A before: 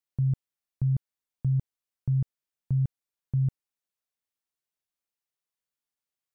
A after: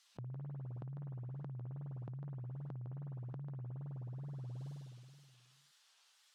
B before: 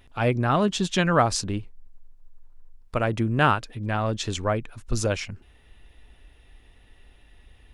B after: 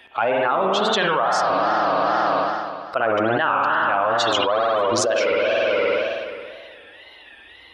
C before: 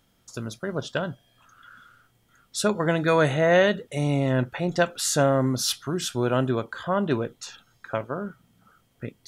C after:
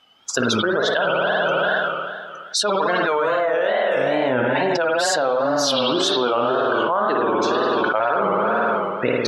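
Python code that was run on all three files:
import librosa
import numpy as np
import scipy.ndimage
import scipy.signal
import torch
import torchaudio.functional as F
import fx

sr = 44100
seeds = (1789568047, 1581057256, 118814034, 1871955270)

y = fx.bin_expand(x, sr, power=1.5)
y = fx.bandpass_edges(y, sr, low_hz=640.0, high_hz=3500.0)
y = fx.peak_eq(y, sr, hz=2200.0, db=-8.0, octaves=0.66)
y = fx.rev_spring(y, sr, rt60_s=1.9, pass_ms=(53,), chirp_ms=50, drr_db=0.5)
y = fx.wow_flutter(y, sr, seeds[0], rate_hz=2.1, depth_cents=130.0)
y = fx.env_flatten(y, sr, amount_pct=100)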